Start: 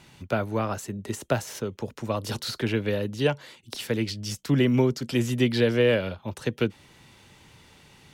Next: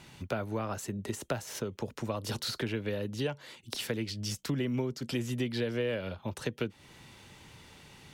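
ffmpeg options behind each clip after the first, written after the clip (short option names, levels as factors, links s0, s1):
-af "acompressor=threshold=0.0251:ratio=3"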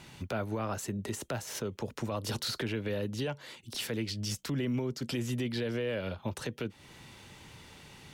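-af "alimiter=level_in=1.26:limit=0.0631:level=0:latency=1:release=16,volume=0.794,volume=1.19"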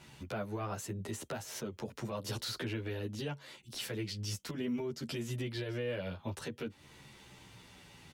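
-filter_complex "[0:a]asplit=2[s0][s1];[s1]adelay=10.9,afreqshift=-0.58[s2];[s0][s2]amix=inputs=2:normalize=1,volume=0.891"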